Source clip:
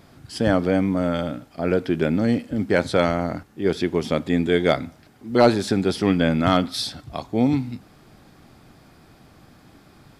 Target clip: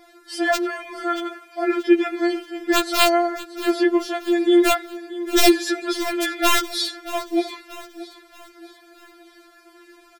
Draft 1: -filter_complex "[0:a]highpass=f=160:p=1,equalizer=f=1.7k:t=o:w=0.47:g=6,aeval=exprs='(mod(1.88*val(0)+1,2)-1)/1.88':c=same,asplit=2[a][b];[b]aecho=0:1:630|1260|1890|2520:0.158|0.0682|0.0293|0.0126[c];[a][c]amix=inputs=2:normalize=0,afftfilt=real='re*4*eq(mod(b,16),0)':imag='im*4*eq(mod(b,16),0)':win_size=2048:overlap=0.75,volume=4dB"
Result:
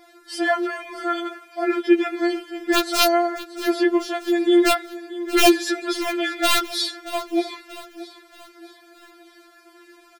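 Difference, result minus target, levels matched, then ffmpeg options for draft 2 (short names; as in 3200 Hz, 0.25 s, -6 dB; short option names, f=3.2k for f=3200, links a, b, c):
125 Hz band -3.0 dB
-filter_complex "[0:a]highpass=f=57:p=1,equalizer=f=1.7k:t=o:w=0.47:g=6,aeval=exprs='(mod(1.88*val(0)+1,2)-1)/1.88':c=same,asplit=2[a][b];[b]aecho=0:1:630|1260|1890|2520:0.158|0.0682|0.0293|0.0126[c];[a][c]amix=inputs=2:normalize=0,afftfilt=real='re*4*eq(mod(b,16),0)':imag='im*4*eq(mod(b,16),0)':win_size=2048:overlap=0.75,volume=4dB"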